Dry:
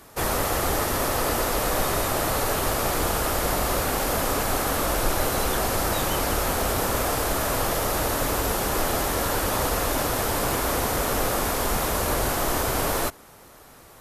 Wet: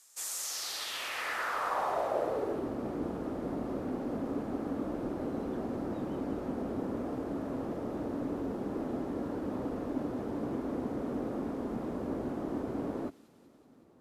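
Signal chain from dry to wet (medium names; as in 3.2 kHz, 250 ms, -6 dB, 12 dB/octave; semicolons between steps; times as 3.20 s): feedback echo behind a high-pass 188 ms, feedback 69%, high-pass 3.8 kHz, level -6.5 dB; band-pass sweep 7.3 kHz -> 260 Hz, 0.36–2.71 s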